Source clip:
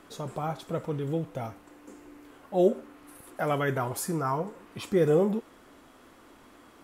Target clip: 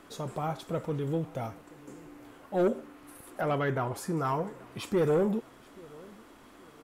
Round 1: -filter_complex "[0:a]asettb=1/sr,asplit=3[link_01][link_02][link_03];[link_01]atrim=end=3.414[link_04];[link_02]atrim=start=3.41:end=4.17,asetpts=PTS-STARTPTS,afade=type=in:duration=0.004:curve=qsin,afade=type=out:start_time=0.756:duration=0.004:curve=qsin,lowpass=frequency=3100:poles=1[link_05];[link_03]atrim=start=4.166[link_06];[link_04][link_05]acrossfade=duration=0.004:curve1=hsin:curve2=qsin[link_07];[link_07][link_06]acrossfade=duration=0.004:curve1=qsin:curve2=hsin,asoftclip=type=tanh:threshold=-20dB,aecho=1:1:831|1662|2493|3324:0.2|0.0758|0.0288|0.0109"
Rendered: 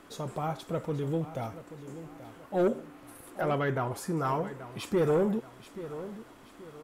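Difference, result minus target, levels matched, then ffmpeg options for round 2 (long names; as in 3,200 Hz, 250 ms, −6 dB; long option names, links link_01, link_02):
echo-to-direct +10 dB
-filter_complex "[0:a]asettb=1/sr,asplit=3[link_01][link_02][link_03];[link_01]atrim=end=3.414[link_04];[link_02]atrim=start=3.41:end=4.17,asetpts=PTS-STARTPTS,afade=type=in:duration=0.004:curve=qsin,afade=type=out:start_time=0.756:duration=0.004:curve=qsin,lowpass=frequency=3100:poles=1[link_05];[link_03]atrim=start=4.166[link_06];[link_04][link_05]acrossfade=duration=0.004:curve1=hsin:curve2=qsin[link_07];[link_07][link_06]acrossfade=duration=0.004:curve1=qsin:curve2=hsin,asoftclip=type=tanh:threshold=-20dB,aecho=1:1:831|1662:0.0631|0.024"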